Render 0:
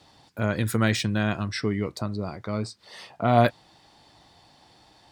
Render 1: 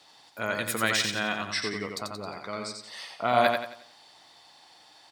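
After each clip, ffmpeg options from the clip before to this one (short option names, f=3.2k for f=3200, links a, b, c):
-filter_complex "[0:a]highpass=f=1.1k:p=1,asplit=2[a][b];[b]aecho=0:1:89|178|267|356|445:0.596|0.22|0.0815|0.0302|0.0112[c];[a][c]amix=inputs=2:normalize=0,volume=2.5dB"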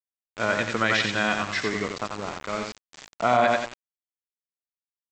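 -af "lowpass=3k,aresample=16000,aeval=exprs='val(0)*gte(abs(val(0)),0.0141)':c=same,aresample=44100,alimiter=level_in=13.5dB:limit=-1dB:release=50:level=0:latency=1,volume=-7.5dB"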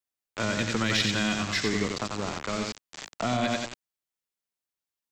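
-filter_complex "[0:a]acrossover=split=320|3000[a][b][c];[b]acompressor=threshold=-35dB:ratio=6[d];[a][d][c]amix=inputs=3:normalize=0,asplit=2[e][f];[f]aeval=exprs='clip(val(0),-1,0.0282)':c=same,volume=-3dB[g];[e][g]amix=inputs=2:normalize=0"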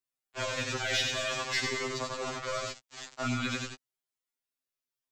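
-filter_complex "[0:a]acrossover=split=240|1000[a][b][c];[a]alimiter=level_in=9.5dB:limit=-24dB:level=0:latency=1,volume=-9.5dB[d];[d][b][c]amix=inputs=3:normalize=0,afftfilt=real='re*2.45*eq(mod(b,6),0)':imag='im*2.45*eq(mod(b,6),0)':win_size=2048:overlap=0.75"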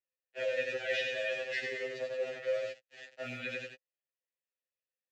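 -filter_complex "[0:a]asubboost=boost=4:cutoff=150,acrusher=bits=5:mode=log:mix=0:aa=0.000001,asplit=3[a][b][c];[a]bandpass=f=530:t=q:w=8,volume=0dB[d];[b]bandpass=f=1.84k:t=q:w=8,volume=-6dB[e];[c]bandpass=f=2.48k:t=q:w=8,volume=-9dB[f];[d][e][f]amix=inputs=3:normalize=0,volume=8dB"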